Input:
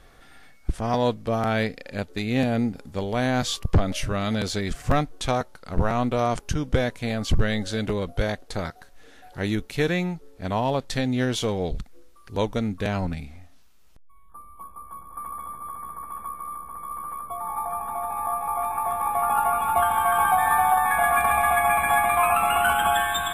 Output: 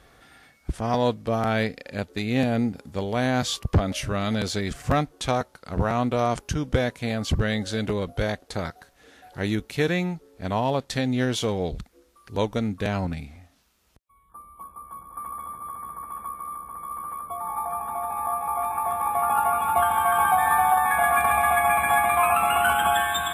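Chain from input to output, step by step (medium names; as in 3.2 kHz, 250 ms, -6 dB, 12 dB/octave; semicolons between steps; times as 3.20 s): high-pass 50 Hz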